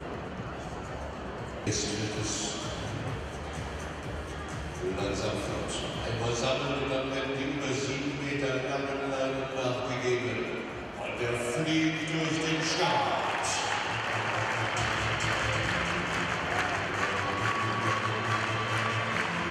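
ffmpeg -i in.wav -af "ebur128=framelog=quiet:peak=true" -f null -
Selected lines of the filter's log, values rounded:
Integrated loudness:
  I:         -30.5 LUFS
  Threshold: -40.5 LUFS
Loudness range:
  LRA:         5.5 LU
  Threshold: -50.4 LUFS
  LRA low:   -34.0 LUFS
  LRA high:  -28.4 LUFS
True peak:
  Peak:      -13.7 dBFS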